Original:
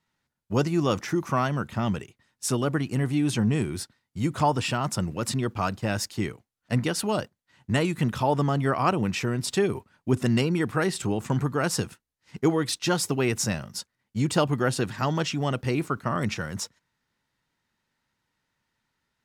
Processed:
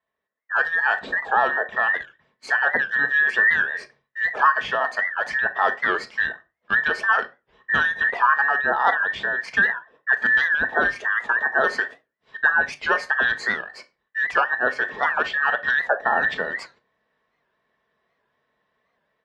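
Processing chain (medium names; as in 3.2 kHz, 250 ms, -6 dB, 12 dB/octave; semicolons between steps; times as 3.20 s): every band turned upside down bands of 2 kHz; high-pass 42 Hz; tone controls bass -12 dB, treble -4 dB; level rider gain up to 11.5 dB; tape spacing loss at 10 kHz 32 dB; reverberation RT60 0.30 s, pre-delay 5 ms, DRR 7 dB; warped record 78 rpm, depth 160 cents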